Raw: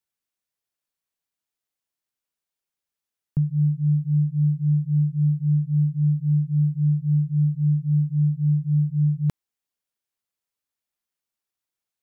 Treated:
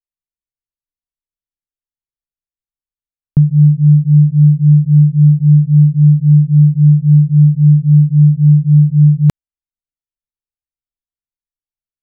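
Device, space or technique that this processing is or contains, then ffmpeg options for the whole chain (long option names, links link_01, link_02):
voice memo with heavy noise removal: -af "anlmdn=0.631,dynaudnorm=framelen=120:gausssize=3:maxgain=6.5dB,volume=6.5dB"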